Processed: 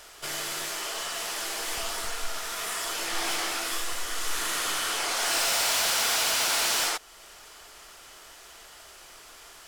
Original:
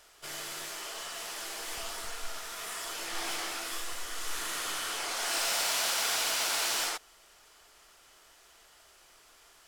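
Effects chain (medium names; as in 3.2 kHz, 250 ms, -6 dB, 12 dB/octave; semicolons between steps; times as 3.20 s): in parallel at -0.5 dB: compression, threshold -47 dBFS, peak gain reduction 18 dB; on the sum: wavefolder -23.5 dBFS; trim +4.5 dB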